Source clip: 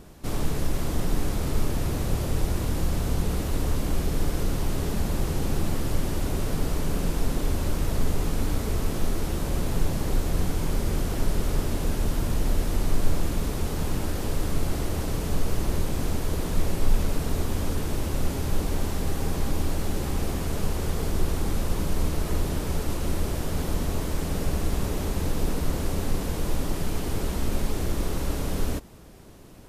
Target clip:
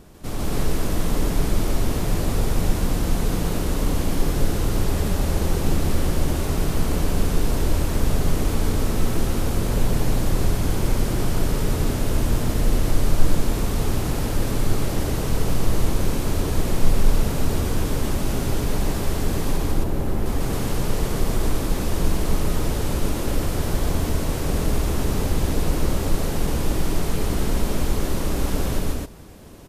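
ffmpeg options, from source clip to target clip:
ffmpeg -i in.wav -filter_complex "[0:a]asettb=1/sr,asplit=3[link_01][link_02][link_03];[link_01]atrim=end=19.574[link_04];[link_02]atrim=start=19.57:end=20.26,asetpts=PTS-STARTPTS,afade=type=in:duration=0.004:curve=qsin,afade=type=out:start_time=0.686:duration=0.004:curve=qsin,equalizer=frequency=6300:width=0.35:gain=-11[link_05];[link_03]atrim=start=20.256[link_06];[link_04][link_05]acrossfade=duration=0.004:curve1=hsin:curve2=qsin[link_07];[link_07][link_06]acrossfade=duration=0.004:curve1=qsin:curve2=hsin,aecho=1:1:145.8|265.3:1|1" out.wav

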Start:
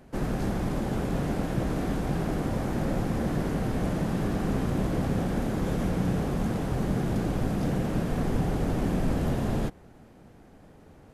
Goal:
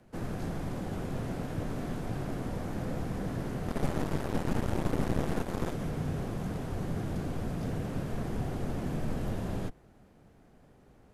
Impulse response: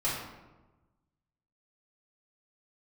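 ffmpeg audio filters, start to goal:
-filter_complex "[0:a]afreqshift=-30,asettb=1/sr,asplit=3[link_01][link_02][link_03];[link_01]atrim=end=3.684[link_04];[link_02]atrim=start=3.68:end=5.73,asetpts=PTS-STARTPTS,afade=type=in:duration=0.004:curve=qsin,afade=type=out:start_time=2.046:duration=0.004:curve=qsin,aeval=exprs='0.178*(cos(1*acos(clip(val(0)/0.178,-1,1)))-cos(1*PI/2))+0.0891*(cos(4*acos(clip(val(0)/0.178,-1,1)))-cos(4*PI/2))':channel_layout=same[link_05];[link_03]atrim=start=5.726[link_06];[link_04][link_05]acrossfade=duration=0.004:curve1=hsin:curve2=qsin[link_07];[link_07][link_06]acrossfade=duration=0.004:curve1=qsin:curve2=hsin,volume=-6.5dB"

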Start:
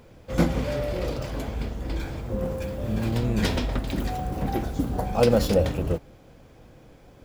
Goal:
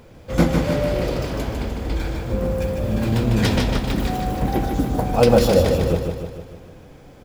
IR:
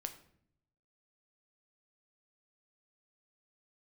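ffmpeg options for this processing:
-af "aecho=1:1:151|302|453|604|755|906|1057:0.562|0.309|0.17|0.0936|0.0515|0.0283|0.0156,volume=4.5dB"

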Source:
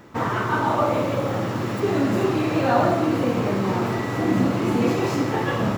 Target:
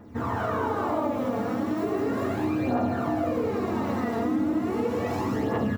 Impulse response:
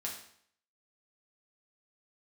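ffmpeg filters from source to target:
-filter_complex "[0:a]highshelf=frequency=9000:gain=10,aecho=1:1:84.55|195.3:0.708|0.794[link_01];[1:a]atrim=start_sample=2205[link_02];[link_01][link_02]afir=irnorm=-1:irlink=0,aphaser=in_gain=1:out_gain=1:delay=4.4:decay=0.51:speed=0.36:type=triangular,tiltshelf=frequency=1300:gain=7,bandreject=frequency=50:width_type=h:width=6,bandreject=frequency=100:width_type=h:width=6,bandreject=frequency=150:width_type=h:width=6,bandreject=frequency=200:width_type=h:width=6,acompressor=threshold=-15dB:ratio=4,volume=-8.5dB"

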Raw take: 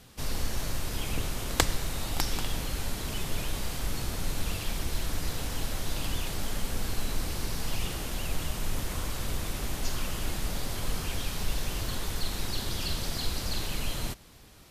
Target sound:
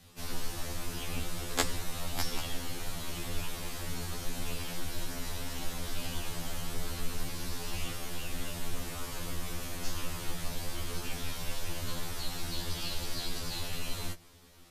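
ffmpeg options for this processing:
ffmpeg -i in.wav -af "afreqshift=-26,afftfilt=real='re*2*eq(mod(b,4),0)':imag='im*2*eq(mod(b,4),0)':win_size=2048:overlap=0.75,volume=-1dB" out.wav

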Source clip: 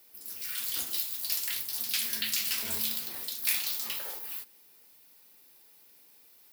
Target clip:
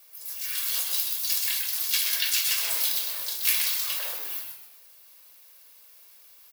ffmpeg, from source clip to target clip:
ffmpeg -i in.wav -filter_complex "[0:a]highpass=frequency=570:width=0.5412,highpass=frequency=570:width=1.3066,aecho=1:1:1.8:0.73,asplit=2[link_01][link_02];[link_02]asetrate=55563,aresample=44100,atempo=0.793701,volume=-5dB[link_03];[link_01][link_03]amix=inputs=2:normalize=0,asplit=5[link_04][link_05][link_06][link_07][link_08];[link_05]adelay=126,afreqshift=-130,volume=-6dB[link_09];[link_06]adelay=252,afreqshift=-260,volume=-14.9dB[link_10];[link_07]adelay=378,afreqshift=-390,volume=-23.7dB[link_11];[link_08]adelay=504,afreqshift=-520,volume=-32.6dB[link_12];[link_04][link_09][link_10][link_11][link_12]amix=inputs=5:normalize=0,volume=2dB" out.wav

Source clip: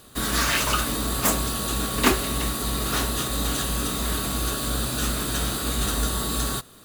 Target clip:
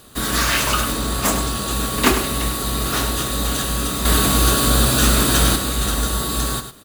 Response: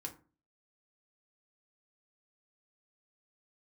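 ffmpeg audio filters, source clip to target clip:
-filter_complex "[0:a]asettb=1/sr,asplit=3[link_01][link_02][link_03];[link_01]atrim=end=0.934[link_04];[link_02]atrim=start=0.93:end=1.71,asetpts=PTS-STARTPTS,afade=type=in:duration=0.004:curve=qsin,afade=type=out:start_time=0.776:duration=0.004:curve=qsin,equalizer=frequency=16000:width=1.2:gain=-13[link_05];[link_03]atrim=start=1.706[link_06];[link_04][link_05]acrossfade=duration=0.004:curve1=hsin:curve2=qsin[link_07];[link_07][link_06]acrossfade=duration=0.004:curve1=qsin:curve2=hsin,asettb=1/sr,asplit=3[link_08][link_09][link_10];[link_08]atrim=end=4.054[link_11];[link_09]atrim=start=4.05:end=5.56,asetpts=PTS-STARTPTS,afade=type=in:duration=0.004:curve=qsin,afade=type=out:start_time=1.506:duration=0.004:curve=qsin,acontrast=66[link_12];[link_10]atrim=start=5.556[link_13];[link_11][link_12]acrossfade=duration=0.004:curve1=hsin:curve2=qsin[link_14];[link_14][link_13]acrossfade=duration=0.004:curve1=qsin:curve2=hsin,aecho=1:1:102:0.335,volume=3.5dB"

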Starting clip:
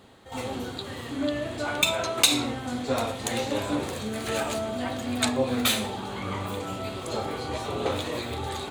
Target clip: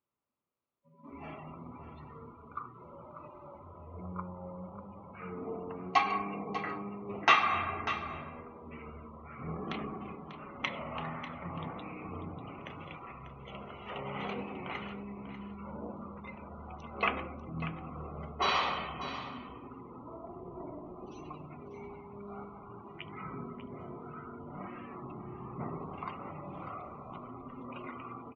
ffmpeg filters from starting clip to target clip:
ffmpeg -i in.wav -filter_complex "[0:a]asetrate=13539,aresample=44100,highpass=frequency=480:poles=1,afftdn=noise_reduction=27:noise_floor=-42,equalizer=frequency=5200:width=3.6:gain=-9,asplit=2[link_01][link_02];[link_02]aecho=0:1:593:0.251[link_03];[link_01][link_03]amix=inputs=2:normalize=0,volume=-5dB" out.wav

